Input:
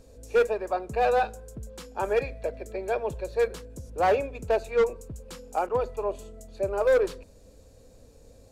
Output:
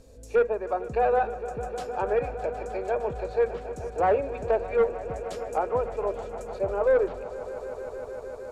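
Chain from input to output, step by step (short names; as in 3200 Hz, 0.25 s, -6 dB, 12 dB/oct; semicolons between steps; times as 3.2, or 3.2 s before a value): treble ducked by the level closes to 1700 Hz, closed at -23.5 dBFS; swelling echo 0.153 s, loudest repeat 5, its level -17.5 dB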